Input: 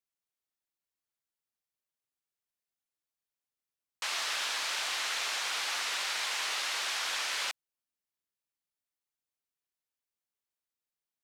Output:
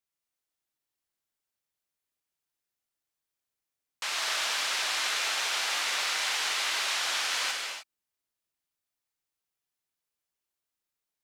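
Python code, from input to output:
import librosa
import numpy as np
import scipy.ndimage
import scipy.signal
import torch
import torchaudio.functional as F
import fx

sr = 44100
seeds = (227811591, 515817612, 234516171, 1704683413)

y = fx.rev_gated(x, sr, seeds[0], gate_ms=330, shape='flat', drr_db=0.5)
y = F.gain(torch.from_numpy(y), 1.0).numpy()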